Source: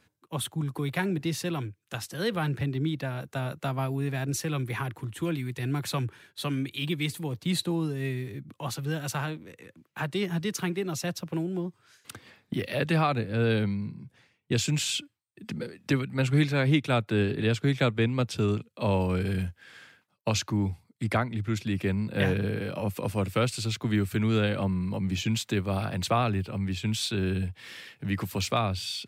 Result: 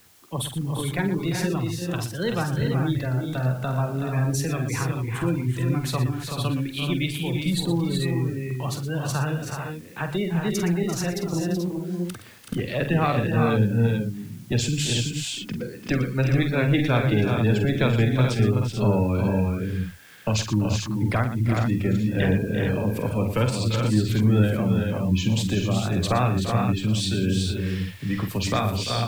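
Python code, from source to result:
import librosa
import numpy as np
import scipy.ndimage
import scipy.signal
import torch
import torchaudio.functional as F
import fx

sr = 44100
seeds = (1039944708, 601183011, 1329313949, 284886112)

p1 = fx.diode_clip(x, sr, knee_db=-21.5)
p2 = fx.spec_gate(p1, sr, threshold_db=-25, keep='strong')
p3 = fx.low_shelf(p2, sr, hz=140.0, db=7.0)
p4 = fx.quant_dither(p3, sr, seeds[0], bits=8, dither='triangular')
p5 = p3 + F.gain(torch.from_numpy(p4), -8.5).numpy()
p6 = fx.hum_notches(p5, sr, base_hz=50, count=3)
y = fx.echo_multitap(p6, sr, ms=(47, 118, 343, 377, 429, 446), db=(-8.5, -12.5, -12.0, -6.0, -9.0, -9.0))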